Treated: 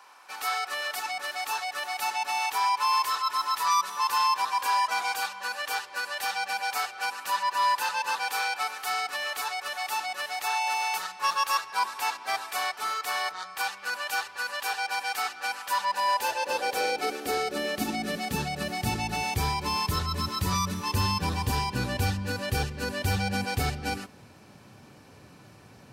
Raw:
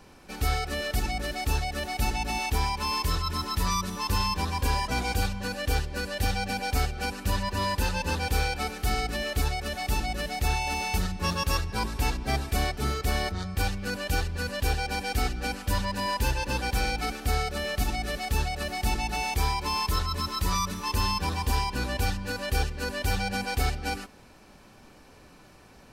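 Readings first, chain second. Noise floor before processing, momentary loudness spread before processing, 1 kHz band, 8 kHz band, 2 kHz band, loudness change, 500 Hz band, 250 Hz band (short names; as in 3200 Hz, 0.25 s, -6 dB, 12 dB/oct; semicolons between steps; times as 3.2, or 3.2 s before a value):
-53 dBFS, 3 LU, +4.0 dB, 0.0 dB, +2.0 dB, +0.5 dB, -1.5 dB, -2.5 dB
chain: high-pass sweep 1000 Hz -> 110 Hz, 15.71–19.06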